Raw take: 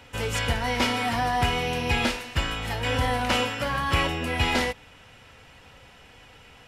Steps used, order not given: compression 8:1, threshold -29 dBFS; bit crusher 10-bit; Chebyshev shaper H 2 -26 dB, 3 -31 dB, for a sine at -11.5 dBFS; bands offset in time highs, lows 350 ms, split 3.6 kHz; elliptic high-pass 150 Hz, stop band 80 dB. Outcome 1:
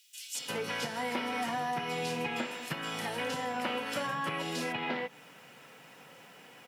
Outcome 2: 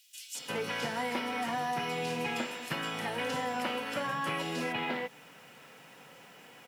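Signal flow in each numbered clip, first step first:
bit crusher > Chebyshev shaper > bands offset in time > compression > elliptic high-pass; elliptic high-pass > compression > bit crusher > Chebyshev shaper > bands offset in time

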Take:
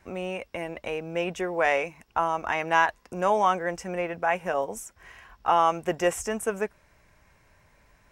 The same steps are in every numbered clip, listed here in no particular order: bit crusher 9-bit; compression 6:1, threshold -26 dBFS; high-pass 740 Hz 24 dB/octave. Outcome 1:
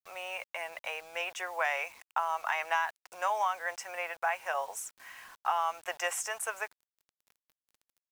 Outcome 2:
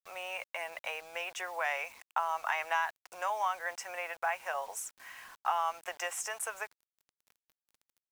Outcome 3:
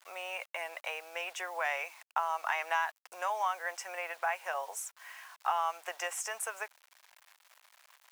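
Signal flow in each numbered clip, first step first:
high-pass > compression > bit crusher; compression > high-pass > bit crusher; compression > bit crusher > high-pass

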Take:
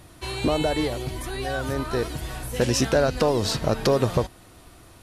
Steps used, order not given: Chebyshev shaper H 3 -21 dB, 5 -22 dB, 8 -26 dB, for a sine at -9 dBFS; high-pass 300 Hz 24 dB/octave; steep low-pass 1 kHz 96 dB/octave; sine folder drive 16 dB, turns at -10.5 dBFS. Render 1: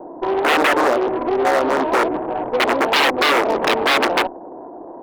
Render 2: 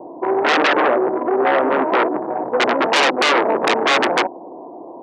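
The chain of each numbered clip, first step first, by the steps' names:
steep low-pass > sine folder > high-pass > Chebyshev shaper; steep low-pass > Chebyshev shaper > sine folder > high-pass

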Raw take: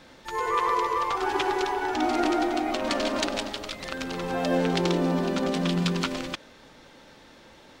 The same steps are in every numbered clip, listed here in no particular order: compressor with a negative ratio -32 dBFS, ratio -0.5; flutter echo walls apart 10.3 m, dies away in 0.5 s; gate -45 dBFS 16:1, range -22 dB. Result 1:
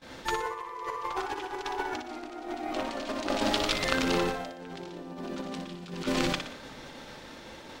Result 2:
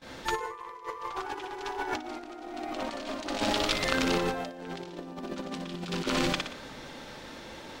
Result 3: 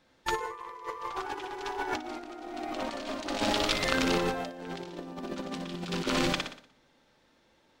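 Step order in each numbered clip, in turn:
compressor with a negative ratio > gate > flutter echo; flutter echo > compressor with a negative ratio > gate; gate > flutter echo > compressor with a negative ratio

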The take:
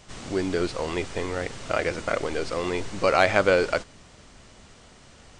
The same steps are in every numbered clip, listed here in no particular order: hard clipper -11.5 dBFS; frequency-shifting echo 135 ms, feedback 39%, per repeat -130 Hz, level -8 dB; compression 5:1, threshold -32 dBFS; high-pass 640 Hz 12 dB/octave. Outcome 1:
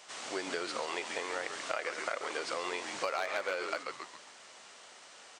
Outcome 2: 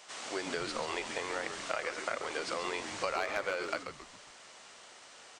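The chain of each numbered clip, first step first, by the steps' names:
frequency-shifting echo > hard clipper > high-pass > compression; high-pass > hard clipper > compression > frequency-shifting echo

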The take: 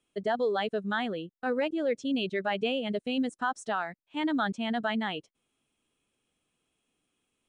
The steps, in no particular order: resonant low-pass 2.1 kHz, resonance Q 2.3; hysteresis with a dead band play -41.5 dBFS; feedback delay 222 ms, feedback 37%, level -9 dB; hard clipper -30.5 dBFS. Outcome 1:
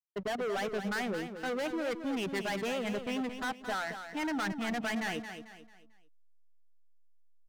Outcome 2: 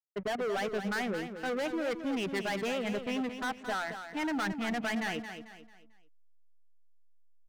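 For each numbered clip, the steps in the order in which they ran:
resonant low-pass > hard clipper > hysteresis with a dead band > feedback delay; hysteresis with a dead band > resonant low-pass > hard clipper > feedback delay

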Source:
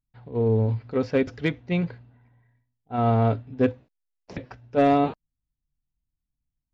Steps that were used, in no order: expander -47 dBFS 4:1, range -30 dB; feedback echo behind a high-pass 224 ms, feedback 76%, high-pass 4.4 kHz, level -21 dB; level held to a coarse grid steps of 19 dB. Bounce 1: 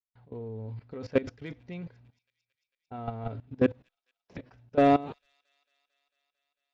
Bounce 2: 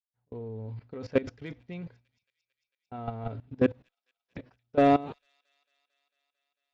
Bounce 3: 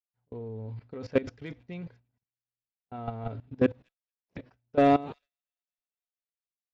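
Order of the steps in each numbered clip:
expander > level held to a coarse grid > feedback echo behind a high-pass; level held to a coarse grid > expander > feedback echo behind a high-pass; level held to a coarse grid > feedback echo behind a high-pass > expander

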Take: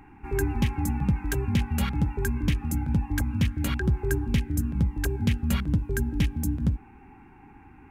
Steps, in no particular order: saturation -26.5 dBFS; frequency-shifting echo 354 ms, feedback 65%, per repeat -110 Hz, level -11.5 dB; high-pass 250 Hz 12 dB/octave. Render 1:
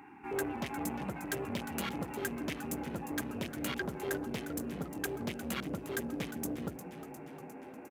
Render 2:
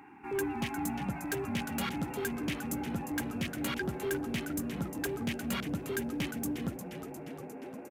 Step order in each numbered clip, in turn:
saturation > frequency-shifting echo > high-pass; frequency-shifting echo > high-pass > saturation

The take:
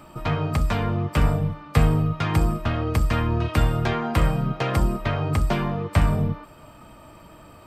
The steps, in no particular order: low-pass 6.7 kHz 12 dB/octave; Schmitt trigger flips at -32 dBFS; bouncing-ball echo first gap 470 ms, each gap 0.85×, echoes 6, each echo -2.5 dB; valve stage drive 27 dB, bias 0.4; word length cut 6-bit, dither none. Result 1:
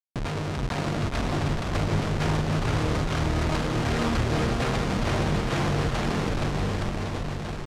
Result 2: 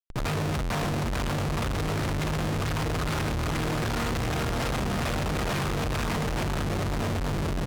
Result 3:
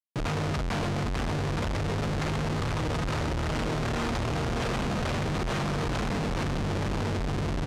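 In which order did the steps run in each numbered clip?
Schmitt trigger > valve stage > bouncing-ball echo > word length cut > low-pass; word length cut > bouncing-ball echo > Schmitt trigger > low-pass > valve stage; valve stage > bouncing-ball echo > word length cut > Schmitt trigger > low-pass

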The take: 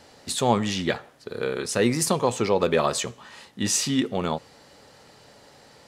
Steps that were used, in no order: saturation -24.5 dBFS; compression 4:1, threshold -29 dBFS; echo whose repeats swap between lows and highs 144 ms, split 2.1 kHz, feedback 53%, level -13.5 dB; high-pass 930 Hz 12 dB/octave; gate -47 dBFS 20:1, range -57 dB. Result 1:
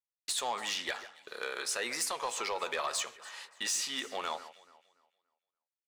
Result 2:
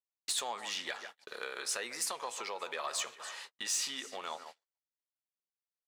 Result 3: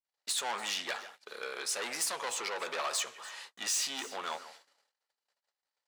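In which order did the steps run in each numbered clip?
high-pass > compression > gate > saturation > echo whose repeats swap between lows and highs; echo whose repeats swap between lows and highs > compression > high-pass > saturation > gate; saturation > echo whose repeats swap between lows and highs > gate > high-pass > compression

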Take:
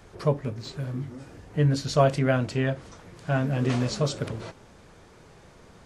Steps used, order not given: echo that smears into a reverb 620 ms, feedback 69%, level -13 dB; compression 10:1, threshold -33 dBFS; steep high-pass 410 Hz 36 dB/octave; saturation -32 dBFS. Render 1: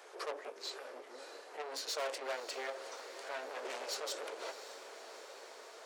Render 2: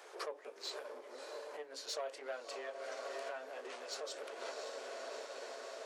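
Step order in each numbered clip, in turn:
saturation > echo that smears into a reverb > compression > steep high-pass; echo that smears into a reverb > compression > saturation > steep high-pass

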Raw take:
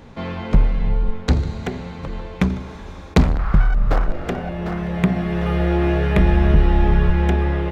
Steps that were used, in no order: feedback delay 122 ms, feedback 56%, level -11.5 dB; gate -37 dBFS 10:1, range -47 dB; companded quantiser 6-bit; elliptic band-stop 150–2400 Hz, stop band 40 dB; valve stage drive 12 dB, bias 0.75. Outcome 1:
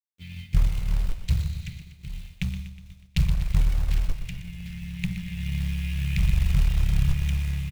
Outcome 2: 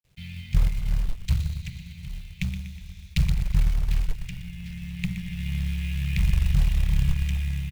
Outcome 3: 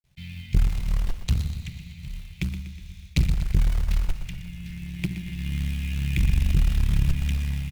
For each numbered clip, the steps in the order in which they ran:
valve stage > elliptic band-stop > gate > companded quantiser > feedback delay; feedback delay > gate > valve stage > elliptic band-stop > companded quantiser; gate > elliptic band-stop > companded quantiser > valve stage > feedback delay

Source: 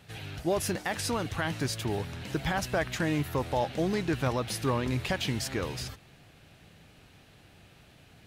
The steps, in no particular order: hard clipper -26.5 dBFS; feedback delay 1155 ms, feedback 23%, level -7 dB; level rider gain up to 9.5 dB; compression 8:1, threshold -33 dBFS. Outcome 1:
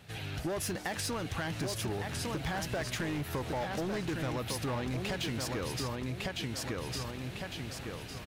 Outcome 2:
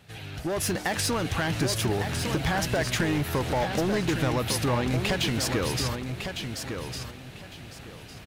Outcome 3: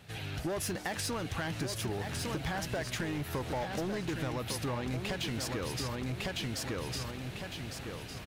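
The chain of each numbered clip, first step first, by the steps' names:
feedback delay > hard clipper > level rider > compression; hard clipper > compression > feedback delay > level rider; hard clipper > feedback delay > level rider > compression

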